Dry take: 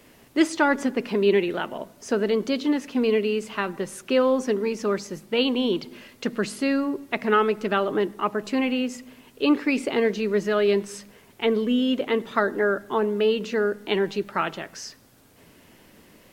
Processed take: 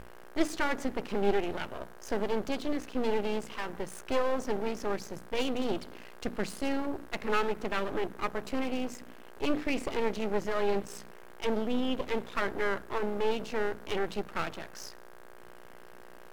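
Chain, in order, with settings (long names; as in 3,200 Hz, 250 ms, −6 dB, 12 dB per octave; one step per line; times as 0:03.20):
hum with harmonics 60 Hz, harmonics 27, −38 dBFS −5 dB per octave
half-wave rectification
mains-hum notches 60/120/180/240/300 Hz
level −3.5 dB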